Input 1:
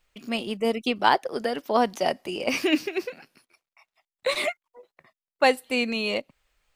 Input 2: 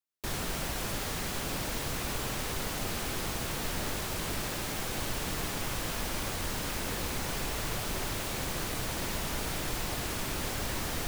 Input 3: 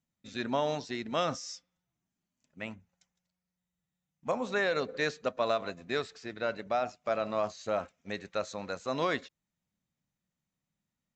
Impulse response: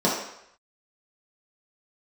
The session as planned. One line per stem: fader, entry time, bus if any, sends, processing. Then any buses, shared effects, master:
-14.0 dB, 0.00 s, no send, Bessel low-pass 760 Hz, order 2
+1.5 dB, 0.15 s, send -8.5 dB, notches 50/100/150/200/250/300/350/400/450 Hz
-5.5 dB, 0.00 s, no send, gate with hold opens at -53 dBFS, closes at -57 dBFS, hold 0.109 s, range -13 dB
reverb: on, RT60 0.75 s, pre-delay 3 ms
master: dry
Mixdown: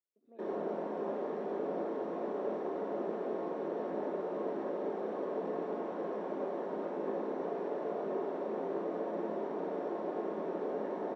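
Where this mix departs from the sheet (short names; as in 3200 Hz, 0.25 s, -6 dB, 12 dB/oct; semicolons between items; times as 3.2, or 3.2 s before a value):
stem 3 -5.5 dB -> -12.5 dB; master: extra ladder band-pass 490 Hz, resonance 40%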